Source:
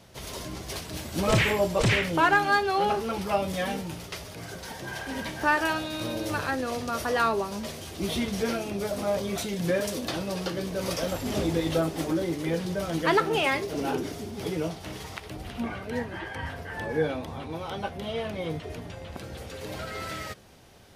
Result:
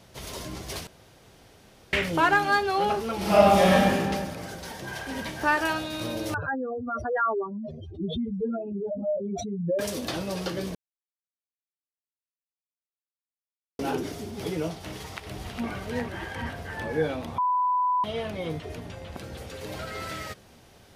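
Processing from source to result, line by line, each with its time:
0:00.87–0:01.93: fill with room tone
0:03.16–0:03.92: thrown reverb, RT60 1.7 s, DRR −9 dB
0:06.34–0:09.79: expanding power law on the bin magnitudes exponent 3.5
0:10.75–0:13.79: silence
0:14.85–0:15.67: delay throw 410 ms, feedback 75%, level −5.5 dB
0:17.38–0:18.04: beep over 996 Hz −21 dBFS

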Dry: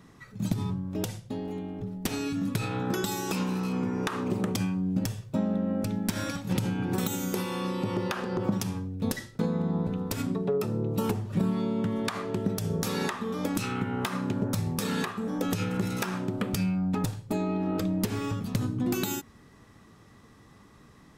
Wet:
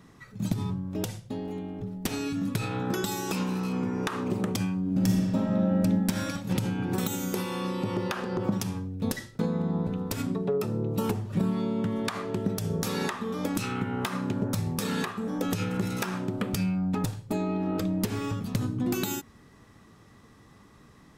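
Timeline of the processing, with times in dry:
0:04.80–0:05.78: thrown reverb, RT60 2.1 s, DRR −1.5 dB

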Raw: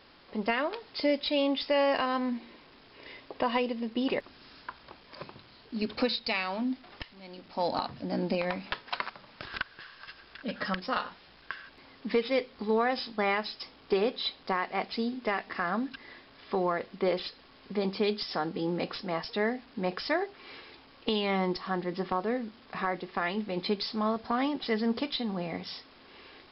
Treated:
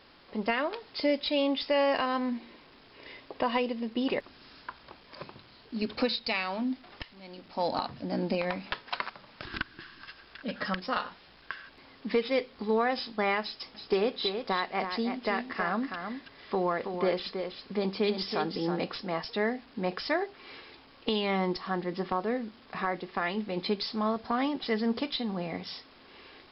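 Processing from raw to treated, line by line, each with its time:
0:09.45–0:10.06: low shelf with overshoot 400 Hz +6.5 dB, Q 3
0:13.42–0:18.88: single-tap delay 325 ms −7 dB

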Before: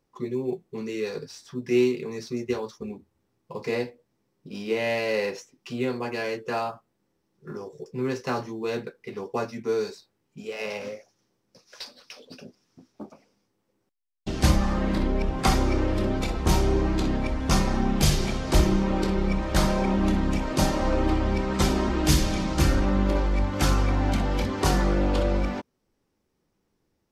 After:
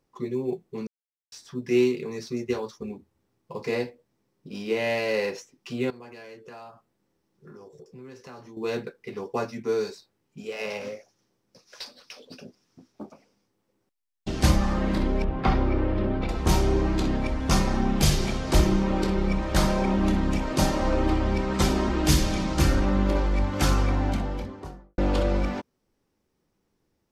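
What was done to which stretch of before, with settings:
0:00.87–0:01.32: silence
0:05.90–0:08.57: downward compressor 3 to 1, threshold −46 dBFS
0:15.24–0:16.29: high-frequency loss of the air 320 metres
0:23.78–0:24.98: fade out and dull

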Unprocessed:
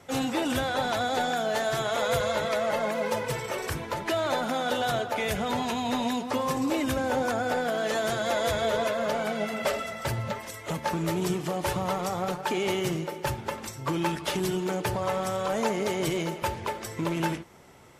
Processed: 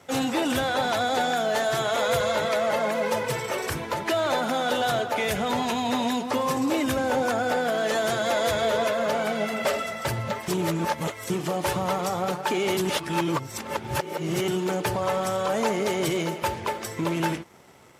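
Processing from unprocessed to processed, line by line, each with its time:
0:10.48–0:11.30: reverse
0:12.77–0:14.48: reverse
whole clip: leveller curve on the samples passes 1; high-pass filter 49 Hz; low-shelf EQ 97 Hz −6.5 dB

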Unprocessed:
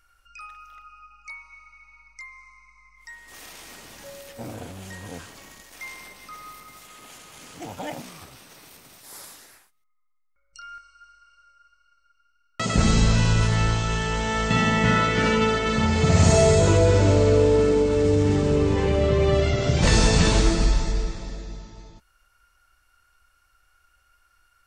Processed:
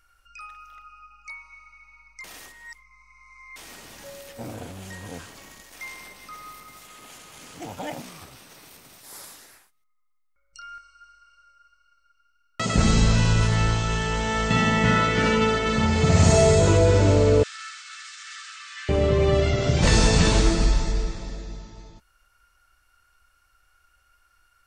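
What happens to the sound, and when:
0:02.24–0:03.56: reverse
0:17.43–0:18.89: Chebyshev high-pass with heavy ripple 1,200 Hz, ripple 3 dB

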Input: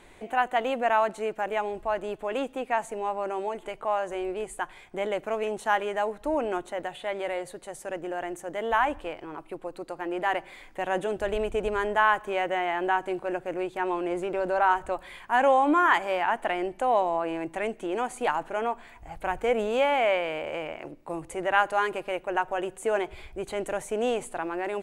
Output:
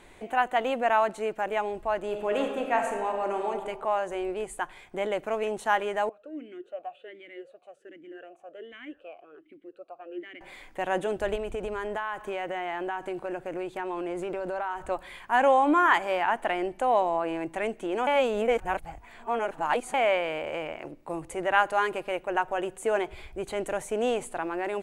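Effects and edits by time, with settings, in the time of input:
0:02.03–0:03.48: thrown reverb, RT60 1.5 s, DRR 2.5 dB
0:06.09–0:10.41: formant filter swept between two vowels a-i 1.3 Hz
0:11.35–0:14.90: downward compressor, threshold −28 dBFS
0:18.07–0:19.94: reverse

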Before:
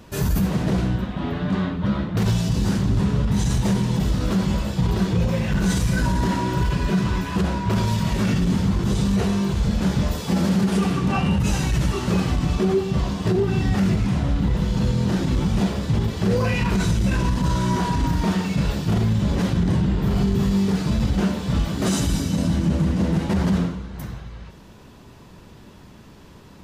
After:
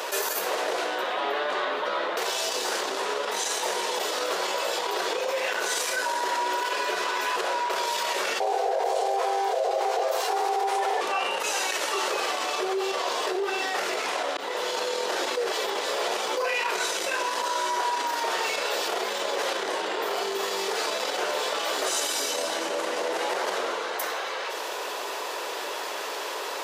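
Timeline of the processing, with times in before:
0:08.40–0:11.01: ring modulation 590 Hz
0:14.37–0:14.77: fade in linear
0:15.37–0:16.37: reverse
whole clip: brickwall limiter −17.5 dBFS; Butterworth high-pass 440 Hz 36 dB per octave; envelope flattener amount 70%

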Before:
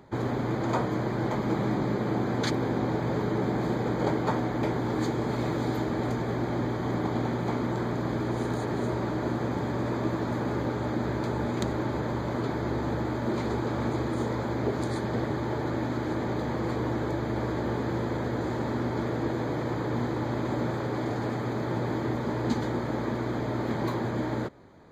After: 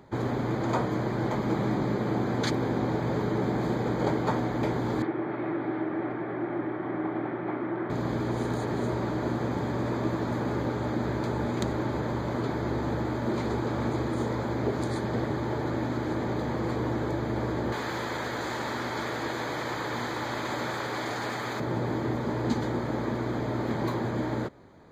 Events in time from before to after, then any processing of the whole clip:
0:05.02–0:07.90: loudspeaker in its box 220–2,400 Hz, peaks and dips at 230 Hz −9 dB, 330 Hz +6 dB, 470 Hz −8 dB, 950 Hz −4 dB
0:17.72–0:21.60: tilt shelving filter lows −9 dB, about 680 Hz

